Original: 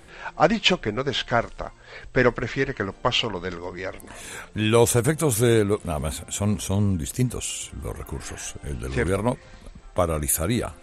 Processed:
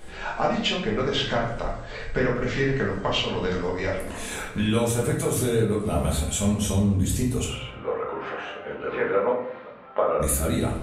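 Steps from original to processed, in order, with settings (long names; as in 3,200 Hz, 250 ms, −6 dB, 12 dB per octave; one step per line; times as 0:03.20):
downward compressor 6 to 1, threshold −26 dBFS, peak gain reduction 14 dB
0:07.44–0:10.20: loudspeaker in its box 380–2,800 Hz, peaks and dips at 520 Hz +7 dB, 920 Hz +4 dB, 1,300 Hz +8 dB
rectangular room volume 150 cubic metres, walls mixed, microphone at 1.4 metres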